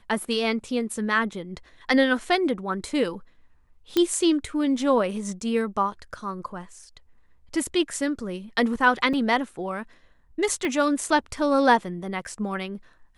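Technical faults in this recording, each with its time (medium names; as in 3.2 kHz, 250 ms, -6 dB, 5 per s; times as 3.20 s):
3.97 s: pop -9 dBFS
9.13–9.14 s: dropout 5.4 ms
10.65 s: pop -16 dBFS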